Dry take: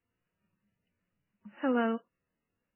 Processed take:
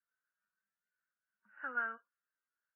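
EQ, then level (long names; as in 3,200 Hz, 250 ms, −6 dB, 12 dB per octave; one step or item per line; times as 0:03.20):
resonant band-pass 1,500 Hz, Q 14
high-frequency loss of the air 400 metres
+11.0 dB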